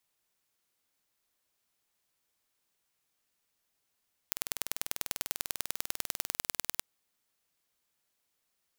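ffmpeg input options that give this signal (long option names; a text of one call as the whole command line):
ffmpeg -f lavfi -i "aevalsrc='0.708*eq(mod(n,2183),0)*(0.5+0.5*eq(mod(n,4366),0))':duration=2.48:sample_rate=44100" out.wav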